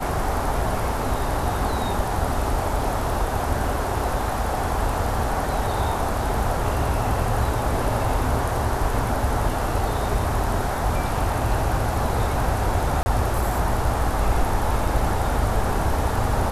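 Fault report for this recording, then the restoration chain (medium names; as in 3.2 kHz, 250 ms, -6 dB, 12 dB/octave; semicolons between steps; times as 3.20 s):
13.03–13.06 s: dropout 30 ms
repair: interpolate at 13.03 s, 30 ms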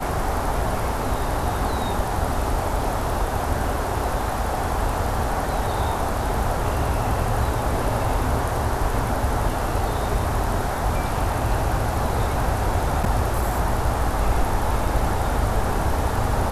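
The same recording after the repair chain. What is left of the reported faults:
nothing left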